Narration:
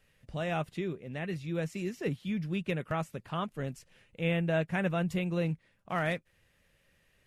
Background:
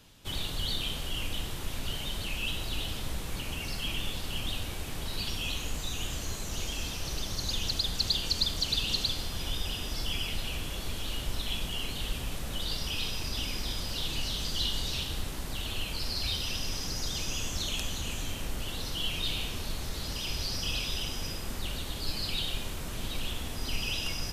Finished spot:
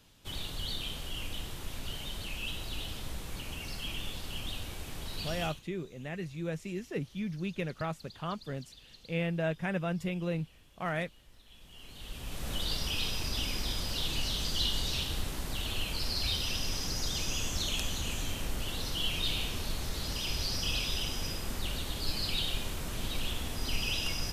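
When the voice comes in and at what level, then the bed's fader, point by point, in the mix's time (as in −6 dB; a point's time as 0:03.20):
4.90 s, −2.5 dB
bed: 0:05.45 −4.5 dB
0:05.65 −25.5 dB
0:11.45 −25.5 dB
0:12.49 0 dB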